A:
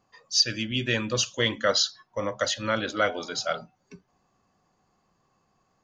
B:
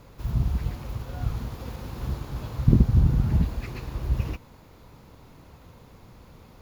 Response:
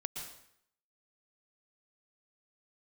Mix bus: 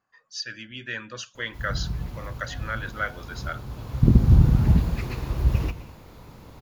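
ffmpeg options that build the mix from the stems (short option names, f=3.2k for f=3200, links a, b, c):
-filter_complex "[0:a]equalizer=f=1.6k:w=1.6:g=14,volume=-13dB,asplit=2[a][b];[1:a]adelay=1350,volume=1.5dB,asplit=2[c][d];[d]volume=-7dB[e];[b]apad=whole_len=351145[f];[c][f]sidechaincompress=threshold=-49dB:ratio=8:attack=12:release=502[g];[2:a]atrim=start_sample=2205[h];[e][h]afir=irnorm=-1:irlink=0[i];[a][g][i]amix=inputs=3:normalize=0"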